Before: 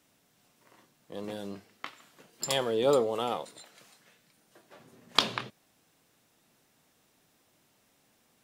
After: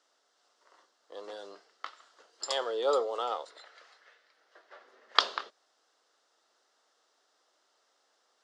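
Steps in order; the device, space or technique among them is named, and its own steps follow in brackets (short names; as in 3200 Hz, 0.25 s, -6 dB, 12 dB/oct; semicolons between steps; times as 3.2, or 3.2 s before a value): 3.5–5.2 graphic EQ 125/500/2000/8000 Hz -5/+3/+9/-8 dB; phone speaker on a table (speaker cabinet 420–7000 Hz, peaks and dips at 1300 Hz +6 dB, 2400 Hz -10 dB, 4800 Hz +4 dB); gain -2 dB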